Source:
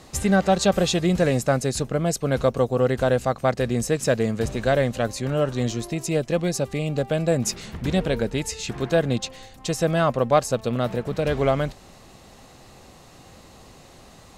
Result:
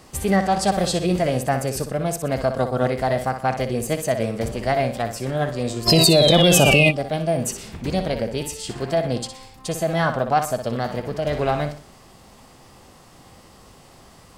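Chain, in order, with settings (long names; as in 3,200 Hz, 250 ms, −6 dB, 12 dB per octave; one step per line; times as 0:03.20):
flutter between parallel walls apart 10.5 metres, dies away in 0.4 s
sound drawn into the spectrogram fall, 0:05.87–0:06.91, 2,000–4,300 Hz −13 dBFS
formants moved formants +3 semitones
level −1 dB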